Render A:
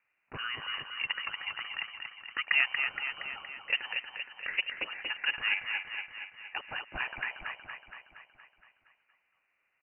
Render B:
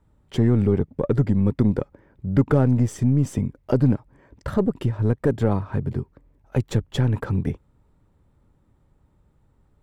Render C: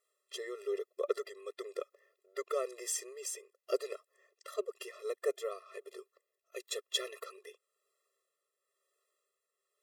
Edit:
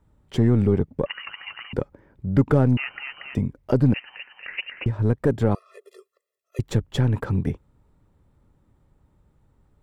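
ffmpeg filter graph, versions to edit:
-filter_complex "[0:a]asplit=3[s0][s1][s2];[1:a]asplit=5[s3][s4][s5][s6][s7];[s3]atrim=end=1.062[s8];[s0]atrim=start=1.058:end=1.732[s9];[s4]atrim=start=1.728:end=2.772[s10];[s1]atrim=start=2.768:end=3.352[s11];[s5]atrim=start=3.348:end=3.942[s12];[s2]atrim=start=3.938:end=4.862[s13];[s6]atrim=start=4.858:end=5.552[s14];[2:a]atrim=start=5.548:end=6.592[s15];[s7]atrim=start=6.588[s16];[s8][s9]acrossfade=d=0.004:c1=hsin:c2=hsin[s17];[s17][s10]acrossfade=d=0.004:c1=hsin:c2=hsin[s18];[s18][s11]acrossfade=d=0.004:c1=hsin:c2=hsin[s19];[s19][s12]acrossfade=d=0.004:c1=hsin:c2=hsin[s20];[s20][s13]acrossfade=d=0.004:c1=hsin:c2=hsin[s21];[s21][s14]acrossfade=d=0.004:c1=hsin:c2=hsin[s22];[s22][s15]acrossfade=d=0.004:c1=hsin:c2=hsin[s23];[s23][s16]acrossfade=d=0.004:c1=hsin:c2=hsin"

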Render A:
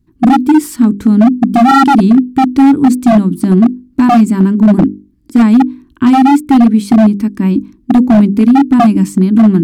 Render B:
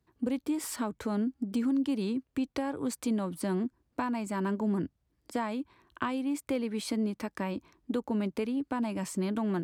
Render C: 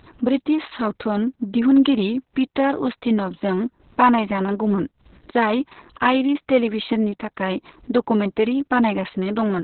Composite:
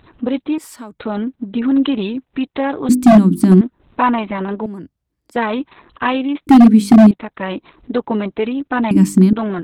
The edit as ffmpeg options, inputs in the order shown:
-filter_complex "[1:a]asplit=2[s0][s1];[0:a]asplit=3[s2][s3][s4];[2:a]asplit=6[s5][s6][s7][s8][s9][s10];[s5]atrim=end=0.582[s11];[s0]atrim=start=0.578:end=0.992[s12];[s6]atrim=start=0.988:end=2.892[s13];[s2]atrim=start=2.888:end=3.612[s14];[s7]atrim=start=3.608:end=4.662[s15];[s1]atrim=start=4.658:end=5.362[s16];[s8]atrim=start=5.358:end=6.472[s17];[s3]atrim=start=6.468:end=7.112[s18];[s9]atrim=start=7.108:end=8.912[s19];[s4]atrim=start=8.908:end=9.332[s20];[s10]atrim=start=9.328[s21];[s11][s12]acrossfade=d=0.004:c1=hsin:c2=hsin[s22];[s22][s13]acrossfade=d=0.004:c1=hsin:c2=hsin[s23];[s23][s14]acrossfade=d=0.004:c1=hsin:c2=hsin[s24];[s24][s15]acrossfade=d=0.004:c1=hsin:c2=hsin[s25];[s25][s16]acrossfade=d=0.004:c1=hsin:c2=hsin[s26];[s26][s17]acrossfade=d=0.004:c1=hsin:c2=hsin[s27];[s27][s18]acrossfade=d=0.004:c1=hsin:c2=hsin[s28];[s28][s19]acrossfade=d=0.004:c1=hsin:c2=hsin[s29];[s29][s20]acrossfade=d=0.004:c1=hsin:c2=hsin[s30];[s30][s21]acrossfade=d=0.004:c1=hsin:c2=hsin"

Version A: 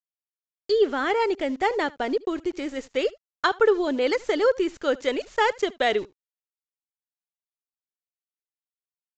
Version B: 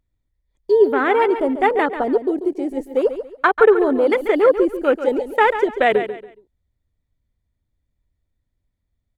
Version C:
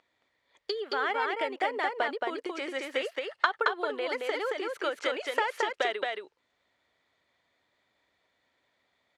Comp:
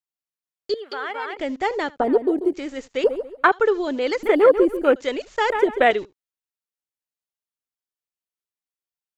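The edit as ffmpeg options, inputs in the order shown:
-filter_complex "[1:a]asplit=4[s0][s1][s2][s3];[0:a]asplit=6[s4][s5][s6][s7][s8][s9];[s4]atrim=end=0.742[s10];[2:a]atrim=start=0.738:end=1.372[s11];[s5]atrim=start=1.368:end=2.002[s12];[s0]atrim=start=1.998:end=2.542[s13];[s6]atrim=start=2.538:end=3.042[s14];[s1]atrim=start=3.038:end=3.522[s15];[s7]atrim=start=3.518:end=4.232[s16];[s2]atrim=start=4.228:end=4.962[s17];[s8]atrim=start=4.958:end=5.502[s18];[s3]atrim=start=5.498:end=5.912[s19];[s9]atrim=start=5.908[s20];[s10][s11]acrossfade=d=0.004:c1=hsin:c2=hsin[s21];[s21][s12]acrossfade=d=0.004:c1=hsin:c2=hsin[s22];[s22][s13]acrossfade=d=0.004:c1=hsin:c2=hsin[s23];[s23][s14]acrossfade=d=0.004:c1=hsin:c2=hsin[s24];[s24][s15]acrossfade=d=0.004:c1=hsin:c2=hsin[s25];[s25][s16]acrossfade=d=0.004:c1=hsin:c2=hsin[s26];[s26][s17]acrossfade=d=0.004:c1=hsin:c2=hsin[s27];[s27][s18]acrossfade=d=0.004:c1=hsin:c2=hsin[s28];[s28][s19]acrossfade=d=0.004:c1=hsin:c2=hsin[s29];[s29][s20]acrossfade=d=0.004:c1=hsin:c2=hsin"

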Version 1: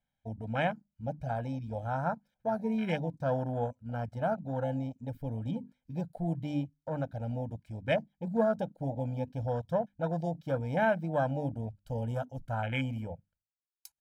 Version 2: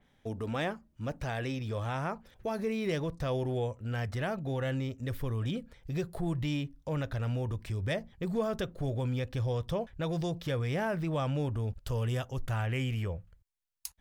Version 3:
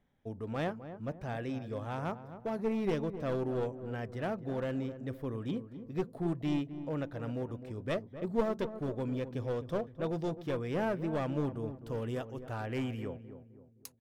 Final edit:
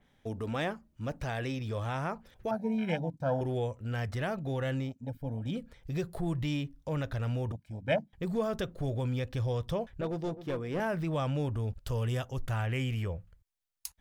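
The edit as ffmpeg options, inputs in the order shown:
-filter_complex "[0:a]asplit=3[s0][s1][s2];[1:a]asplit=5[s3][s4][s5][s6][s7];[s3]atrim=end=2.512[s8];[s0]atrim=start=2.508:end=3.412[s9];[s4]atrim=start=3.408:end=4.96[s10];[s1]atrim=start=4.8:end=5.58[s11];[s5]atrim=start=5.42:end=7.522[s12];[s2]atrim=start=7.518:end=8.132[s13];[s6]atrim=start=8.128:end=10.012[s14];[2:a]atrim=start=10.008:end=10.802[s15];[s7]atrim=start=10.798[s16];[s8][s9]acrossfade=d=0.004:c1=hsin:c2=hsin[s17];[s17][s10]acrossfade=d=0.004:c1=hsin:c2=hsin[s18];[s18][s11]acrossfade=d=0.16:c1=tri:c2=tri[s19];[s19][s12]acrossfade=d=0.16:c1=tri:c2=tri[s20];[s20][s13]acrossfade=d=0.004:c1=hsin:c2=hsin[s21];[s21][s14]acrossfade=d=0.004:c1=hsin:c2=hsin[s22];[s22][s15]acrossfade=d=0.004:c1=hsin:c2=hsin[s23];[s23][s16]acrossfade=d=0.004:c1=hsin:c2=hsin"

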